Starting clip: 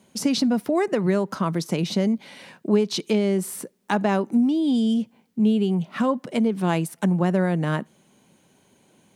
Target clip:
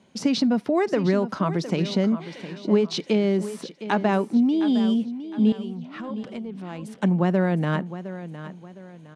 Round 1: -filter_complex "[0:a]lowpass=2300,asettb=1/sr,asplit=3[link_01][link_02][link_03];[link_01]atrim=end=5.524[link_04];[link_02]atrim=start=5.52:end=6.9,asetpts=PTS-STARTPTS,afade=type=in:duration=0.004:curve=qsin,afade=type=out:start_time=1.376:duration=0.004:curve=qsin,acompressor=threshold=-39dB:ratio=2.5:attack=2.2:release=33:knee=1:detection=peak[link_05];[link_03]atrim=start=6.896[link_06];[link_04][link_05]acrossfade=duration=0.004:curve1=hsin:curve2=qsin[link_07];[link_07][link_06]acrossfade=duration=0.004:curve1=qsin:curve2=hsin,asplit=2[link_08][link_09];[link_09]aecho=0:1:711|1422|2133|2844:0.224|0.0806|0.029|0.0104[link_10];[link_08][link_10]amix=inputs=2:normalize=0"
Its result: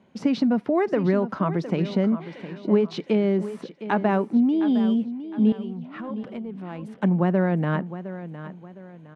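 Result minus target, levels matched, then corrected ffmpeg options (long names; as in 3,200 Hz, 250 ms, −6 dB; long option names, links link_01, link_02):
4,000 Hz band −7.5 dB
-filter_complex "[0:a]lowpass=5100,asettb=1/sr,asplit=3[link_01][link_02][link_03];[link_01]atrim=end=5.524[link_04];[link_02]atrim=start=5.52:end=6.9,asetpts=PTS-STARTPTS,afade=type=in:duration=0.004:curve=qsin,afade=type=out:start_time=1.376:duration=0.004:curve=qsin,acompressor=threshold=-39dB:ratio=2.5:attack=2.2:release=33:knee=1:detection=peak[link_05];[link_03]atrim=start=6.896[link_06];[link_04][link_05]acrossfade=duration=0.004:curve1=hsin:curve2=qsin[link_07];[link_07][link_06]acrossfade=duration=0.004:curve1=qsin:curve2=hsin,asplit=2[link_08][link_09];[link_09]aecho=0:1:711|1422|2133|2844:0.224|0.0806|0.029|0.0104[link_10];[link_08][link_10]amix=inputs=2:normalize=0"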